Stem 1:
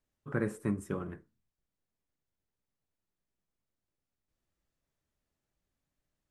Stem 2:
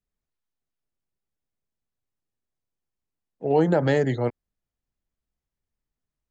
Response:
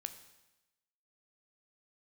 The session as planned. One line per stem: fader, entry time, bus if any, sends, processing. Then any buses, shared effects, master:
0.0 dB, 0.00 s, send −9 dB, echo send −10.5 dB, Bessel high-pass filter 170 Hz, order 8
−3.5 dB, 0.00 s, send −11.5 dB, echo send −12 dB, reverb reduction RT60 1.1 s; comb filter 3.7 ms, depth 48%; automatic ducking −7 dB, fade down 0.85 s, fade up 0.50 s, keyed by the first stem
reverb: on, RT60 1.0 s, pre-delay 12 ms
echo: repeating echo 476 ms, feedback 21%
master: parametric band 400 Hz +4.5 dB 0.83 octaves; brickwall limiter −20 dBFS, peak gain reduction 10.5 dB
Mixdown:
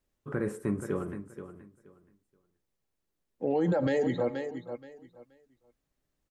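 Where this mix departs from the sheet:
stem 1: missing Bessel high-pass filter 170 Hz, order 8
stem 2: send −11.5 dB → −2.5 dB

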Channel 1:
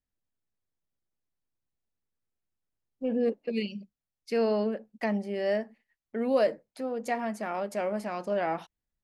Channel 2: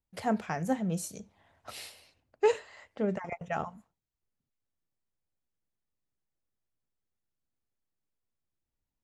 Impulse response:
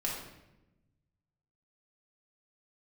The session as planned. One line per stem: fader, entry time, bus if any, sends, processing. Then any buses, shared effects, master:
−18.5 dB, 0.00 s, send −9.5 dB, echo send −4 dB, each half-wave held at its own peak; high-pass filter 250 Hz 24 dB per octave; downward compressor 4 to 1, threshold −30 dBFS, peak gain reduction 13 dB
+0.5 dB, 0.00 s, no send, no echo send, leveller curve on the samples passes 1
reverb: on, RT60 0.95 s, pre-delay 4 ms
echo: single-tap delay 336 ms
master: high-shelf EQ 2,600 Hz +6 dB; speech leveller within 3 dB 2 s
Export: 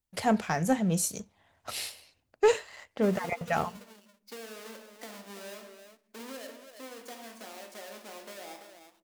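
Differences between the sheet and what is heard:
stem 1: send −9.5 dB → −2.5 dB
master: missing speech leveller within 3 dB 2 s

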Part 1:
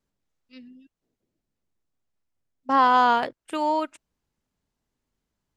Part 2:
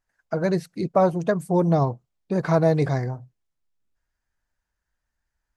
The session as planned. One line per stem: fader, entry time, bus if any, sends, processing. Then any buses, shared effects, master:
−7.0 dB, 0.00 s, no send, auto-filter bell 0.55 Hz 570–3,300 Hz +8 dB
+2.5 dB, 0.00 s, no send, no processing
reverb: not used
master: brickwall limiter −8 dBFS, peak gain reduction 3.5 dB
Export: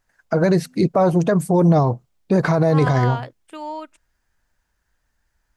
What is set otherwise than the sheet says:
stem 1: missing auto-filter bell 0.55 Hz 570–3,300 Hz +8 dB
stem 2 +2.5 dB → +10.0 dB

